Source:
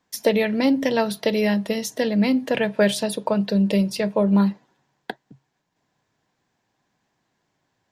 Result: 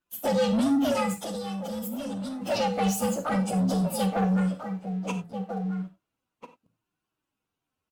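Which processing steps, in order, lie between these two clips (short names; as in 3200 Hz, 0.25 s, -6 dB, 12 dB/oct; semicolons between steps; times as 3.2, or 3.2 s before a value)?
inharmonic rescaling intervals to 125%; limiter -17.5 dBFS, peak gain reduction 9 dB; flange 0.86 Hz, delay 2.6 ms, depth 1.9 ms, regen +58%; outdoor echo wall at 230 m, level -9 dB; sample leveller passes 2; 1.23–2.42 level quantiser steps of 11 dB; reverb, pre-delay 28 ms, DRR 8.5 dB; MP3 96 kbps 44100 Hz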